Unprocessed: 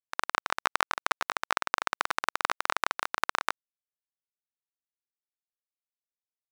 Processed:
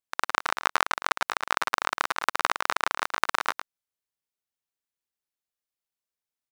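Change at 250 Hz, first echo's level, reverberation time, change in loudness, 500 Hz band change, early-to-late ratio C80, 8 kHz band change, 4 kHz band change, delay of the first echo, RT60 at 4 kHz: +3.5 dB, -10.0 dB, none, +3.5 dB, +3.5 dB, none, +3.5 dB, +3.5 dB, 0.109 s, none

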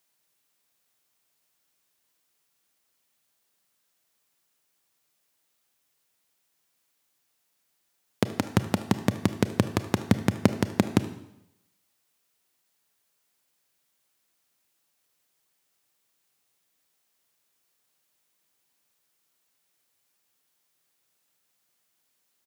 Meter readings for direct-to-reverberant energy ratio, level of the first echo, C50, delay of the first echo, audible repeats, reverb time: 10.5 dB, -19.0 dB, 12.0 dB, 75 ms, 1, 0.85 s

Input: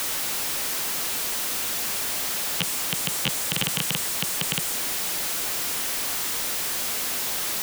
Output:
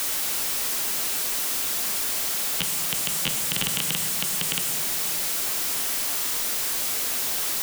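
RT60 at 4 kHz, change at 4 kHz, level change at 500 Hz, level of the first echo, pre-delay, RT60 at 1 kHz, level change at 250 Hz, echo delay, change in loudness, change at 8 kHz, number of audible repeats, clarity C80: 1.0 s, -0.5 dB, -1.5 dB, none, 3 ms, 2.1 s, -2.0 dB, none, +1.0 dB, +1.0 dB, none, 9.5 dB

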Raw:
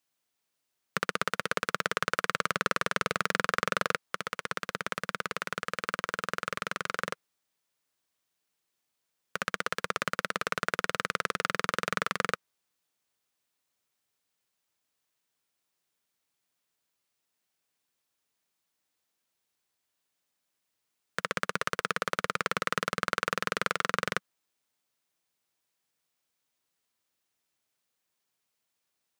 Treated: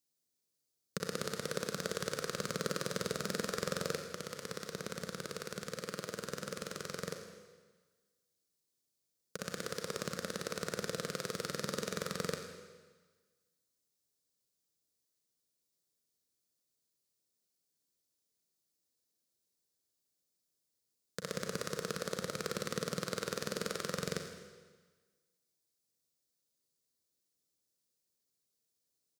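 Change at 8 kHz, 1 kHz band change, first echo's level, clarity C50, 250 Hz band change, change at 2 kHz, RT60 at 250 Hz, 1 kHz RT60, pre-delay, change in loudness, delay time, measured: -0.5 dB, -13.0 dB, -14.5 dB, 5.5 dB, -1.0 dB, -13.0 dB, 1.4 s, 1.4 s, 34 ms, -7.5 dB, 90 ms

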